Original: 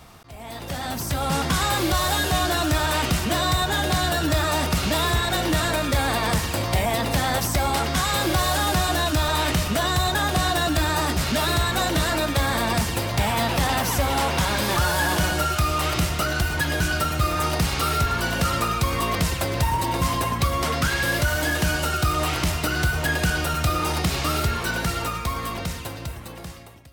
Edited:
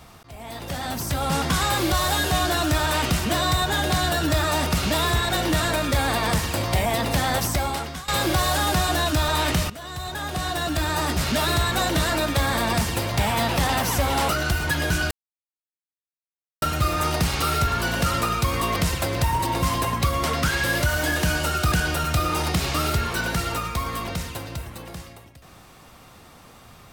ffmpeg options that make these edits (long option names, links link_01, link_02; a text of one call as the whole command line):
ffmpeg -i in.wav -filter_complex "[0:a]asplit=6[link_01][link_02][link_03][link_04][link_05][link_06];[link_01]atrim=end=8.08,asetpts=PTS-STARTPTS,afade=type=out:start_time=7.47:duration=0.61:silence=0.112202[link_07];[link_02]atrim=start=8.08:end=9.7,asetpts=PTS-STARTPTS,afade=type=in:duration=0.004:curve=hsin:silence=0.112202,afade=type=out:start_time=1.616:duration=0.004:curve=hsin:silence=0.125893[link_08];[link_03]atrim=start=9.7:end=14.292,asetpts=PTS-STARTPTS,afade=type=in:duration=1.55:silence=0.125893[link_09];[link_04]atrim=start=16.188:end=17.01,asetpts=PTS-STARTPTS,afade=type=out:start_time=0.818:duration=0.004:curve=hsin,apad=pad_dur=1.51[link_10];[link_05]atrim=start=17.01:end=22.112,asetpts=PTS-STARTPTS,afade=type=in:duration=0.004:curve=hsin[link_11];[link_06]atrim=start=23.218[link_12];[link_07][link_08][link_09]concat=n=3:v=0:a=1[link_13];[link_10][link_11]concat=n=2:v=0:a=1[link_14];[link_13][link_14]acrossfade=duration=0.004:curve1=hsin:curve2=hsin[link_15];[link_15][link_12]acrossfade=duration=0.004:curve1=hsin:curve2=hsin" out.wav